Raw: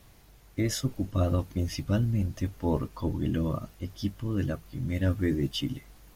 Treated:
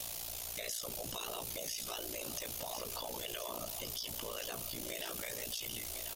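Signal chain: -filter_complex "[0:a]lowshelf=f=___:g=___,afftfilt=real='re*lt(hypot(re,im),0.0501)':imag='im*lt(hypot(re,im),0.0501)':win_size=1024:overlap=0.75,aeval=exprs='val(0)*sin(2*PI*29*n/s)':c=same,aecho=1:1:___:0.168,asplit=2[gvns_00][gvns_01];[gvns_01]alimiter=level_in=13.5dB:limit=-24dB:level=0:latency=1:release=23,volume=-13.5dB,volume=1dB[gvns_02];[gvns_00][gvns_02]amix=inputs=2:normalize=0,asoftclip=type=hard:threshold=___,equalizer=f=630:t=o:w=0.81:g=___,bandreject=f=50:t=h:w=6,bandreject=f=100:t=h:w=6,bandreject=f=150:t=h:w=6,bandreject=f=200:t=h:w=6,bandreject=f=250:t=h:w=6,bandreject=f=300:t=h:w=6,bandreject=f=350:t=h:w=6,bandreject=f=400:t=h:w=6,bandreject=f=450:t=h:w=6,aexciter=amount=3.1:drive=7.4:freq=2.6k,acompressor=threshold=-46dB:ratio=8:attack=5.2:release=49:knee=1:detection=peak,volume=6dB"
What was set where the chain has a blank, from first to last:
430, -7.5, 1038, -28.5dB, 9.5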